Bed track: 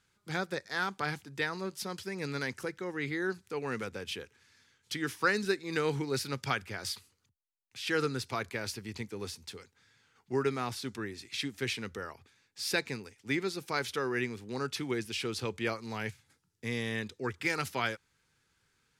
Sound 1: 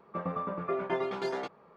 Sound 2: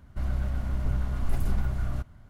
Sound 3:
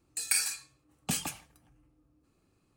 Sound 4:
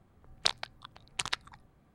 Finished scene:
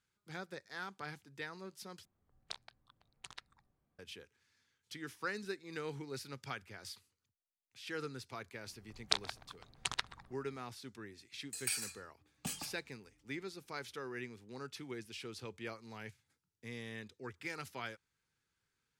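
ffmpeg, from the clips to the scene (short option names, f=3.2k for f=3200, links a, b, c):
-filter_complex "[4:a]asplit=2[a][b];[0:a]volume=-11.5dB[c];[b]asplit=2[d][e];[e]adelay=128,lowpass=f=1.2k:p=1,volume=-13dB,asplit=2[f][g];[g]adelay=128,lowpass=f=1.2k:p=1,volume=0.31,asplit=2[h][i];[i]adelay=128,lowpass=f=1.2k:p=1,volume=0.31[j];[d][f][h][j]amix=inputs=4:normalize=0[k];[c]asplit=2[l][m];[l]atrim=end=2.054[n];[a]atrim=end=1.94,asetpts=PTS-STARTPTS,volume=-17.5dB[o];[m]atrim=start=3.986[p];[k]atrim=end=1.94,asetpts=PTS-STARTPTS,volume=-4dB,afade=t=in:d=0.004:c=hsin,afade=t=out:st=1.936:d=0.004:c=hsin,adelay=381906S[q];[3:a]atrim=end=2.76,asetpts=PTS-STARTPTS,volume=-9.5dB,afade=t=in:d=0.004:c=hsin,afade=t=out:st=2.756:d=0.004:c=hsin,adelay=11360[r];[n][o]acrossfade=d=0.004:c1=hsin:c2=hsin[s];[s][p]acrossfade=d=0.004:c1=hsin:c2=hsin[t];[t][q][r]amix=inputs=3:normalize=0"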